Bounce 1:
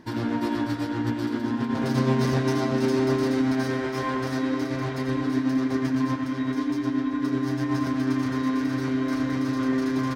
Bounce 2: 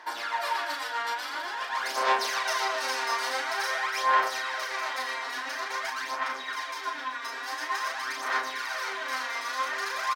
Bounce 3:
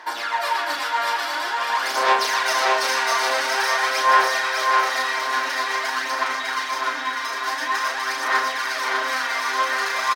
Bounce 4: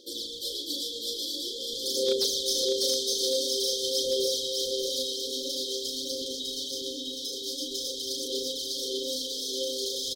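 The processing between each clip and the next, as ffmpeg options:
-filter_complex "[0:a]highpass=f=740:w=0.5412,highpass=f=740:w=1.3066,aphaser=in_gain=1:out_gain=1:delay=4.3:decay=0.64:speed=0.48:type=sinusoidal,asplit=2[s0][s1];[s1]adelay=36,volume=0.596[s2];[s0][s2]amix=inputs=2:normalize=0,volume=1.33"
-af "aecho=1:1:601|1202|1803|2404|3005:0.668|0.287|0.124|0.0531|0.0228,volume=2.11"
-af "afftfilt=real='re*(1-between(b*sr/4096,570,3100))':imag='im*(1-between(b*sr/4096,570,3100))':win_size=4096:overlap=0.75,lowshelf=f=320:g=4,asoftclip=type=hard:threshold=0.133"

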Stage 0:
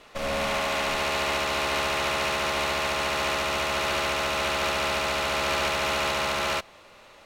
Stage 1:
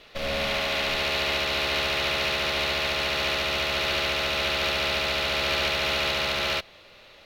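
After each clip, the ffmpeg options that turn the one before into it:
-af "equalizer=f=250:t=o:w=1:g=-4,equalizer=f=1000:t=o:w=1:g=-8,equalizer=f=4000:t=o:w=1:g=6,equalizer=f=8000:t=o:w=1:g=-11,volume=1.26"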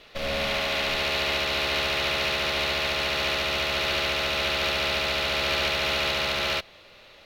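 -af anull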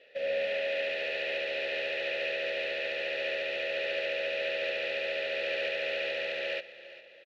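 -filter_complex "[0:a]asplit=3[s0][s1][s2];[s0]bandpass=f=530:t=q:w=8,volume=1[s3];[s1]bandpass=f=1840:t=q:w=8,volume=0.501[s4];[s2]bandpass=f=2480:t=q:w=8,volume=0.355[s5];[s3][s4][s5]amix=inputs=3:normalize=0,aecho=1:1:402|804|1206|1608:0.158|0.0682|0.0293|0.0126,volume=1.58"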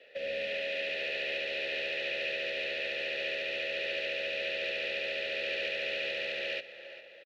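-filter_complex "[0:a]acrossover=split=290|400|1900[s0][s1][s2][s3];[s1]asplit=2[s4][s5];[s5]adelay=41,volume=0.282[s6];[s4][s6]amix=inputs=2:normalize=0[s7];[s2]acompressor=threshold=0.00631:ratio=6[s8];[s0][s7][s8][s3]amix=inputs=4:normalize=0,volume=1.19"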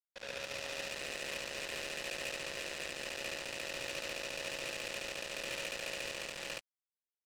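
-af "acrusher=bits=4:mix=0:aa=0.5,volume=0.562"

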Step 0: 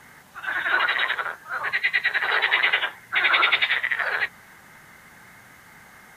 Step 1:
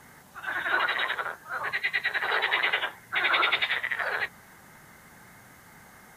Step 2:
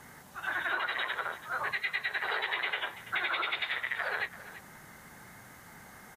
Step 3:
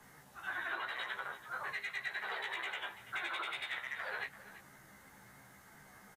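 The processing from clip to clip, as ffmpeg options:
-af "equalizer=f=2300:w=0.64:g=-6"
-af "acompressor=threshold=0.0355:ratio=6,aecho=1:1:336:0.168"
-filter_complex "[0:a]acrossover=split=150|1700[s0][s1][s2];[s2]volume=28.2,asoftclip=hard,volume=0.0355[s3];[s0][s1][s3]amix=inputs=3:normalize=0,flanger=delay=4.5:depth=7:regen=70:speed=0.89:shape=triangular,asplit=2[s4][s5];[s5]adelay=15,volume=0.708[s6];[s4][s6]amix=inputs=2:normalize=0,volume=0.596"

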